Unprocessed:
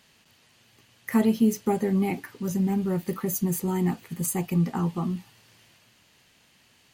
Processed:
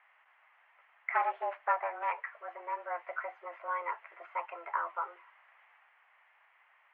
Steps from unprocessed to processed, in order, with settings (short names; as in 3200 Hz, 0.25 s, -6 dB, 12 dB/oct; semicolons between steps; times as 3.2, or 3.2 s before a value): 1.15–2.12 self-modulated delay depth 0.47 ms; mistuned SSB +170 Hz 590–2000 Hz; gain +2.5 dB